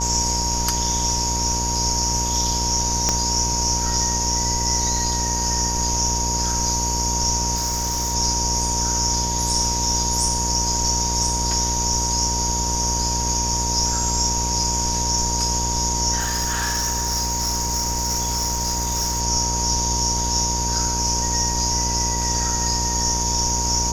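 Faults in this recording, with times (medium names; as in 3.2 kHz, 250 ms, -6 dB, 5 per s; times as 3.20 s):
buzz 60 Hz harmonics 19 -26 dBFS
whine 940 Hz -27 dBFS
3.09 s: pop -5 dBFS
7.55–8.15 s: clipped -19.5 dBFS
16.19–19.22 s: clipped -19 dBFS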